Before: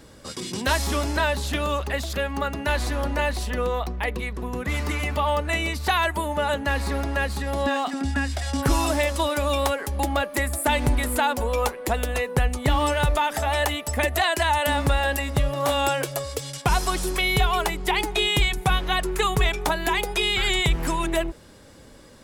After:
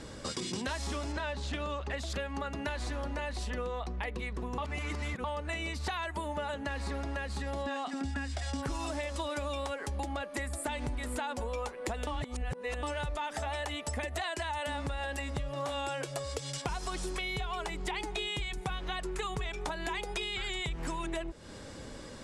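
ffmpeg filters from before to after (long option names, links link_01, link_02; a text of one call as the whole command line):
ffmpeg -i in.wav -filter_complex "[0:a]asettb=1/sr,asplit=3[link_01][link_02][link_03];[link_01]atrim=end=1.124[link_04];[link_02]atrim=start=1.12:end=1.97,asetpts=PTS-STARTPTS,afade=type=in:duration=0.004:curve=qsin,afade=type=out:start_time=0.846:duration=0.004:curve=qsin,adynamicsmooth=sensitivity=4.5:basefreq=5400[link_05];[link_03]atrim=start=1.966[link_06];[link_04][link_05]acrossfade=duration=0.004:curve1=hsin:curve2=qsin[link_07];[link_07][link_06]acrossfade=duration=0.004:curve1=qsin:curve2=hsin,asplit=5[link_08][link_09][link_10][link_11][link_12];[link_08]atrim=end=4.582[link_13];[link_09]atrim=start=4.578:end=5.242,asetpts=PTS-STARTPTS,areverse[link_14];[link_10]atrim=start=5.238:end=12.072[link_15];[link_11]atrim=start=12.068:end=12.832,asetpts=PTS-STARTPTS,areverse[link_16];[link_12]atrim=start=12.828[link_17];[link_13][link_14]acrossfade=duration=0.004:curve1=hsin:curve2=hsin[link_18];[link_18][link_15]acrossfade=duration=0.004:curve1=hsin:curve2=hsin[link_19];[link_19][link_16]acrossfade=duration=0.004:curve1=hsin:curve2=hsin[link_20];[link_20][link_17]acrossfade=duration=0.004:curve1=hsin:curve2=hsin,lowpass=frequency=9100:width=0.5412,lowpass=frequency=9100:width=1.3066,alimiter=limit=-14.5dB:level=0:latency=1:release=80,acompressor=threshold=-37dB:ratio=6,volume=3dB" out.wav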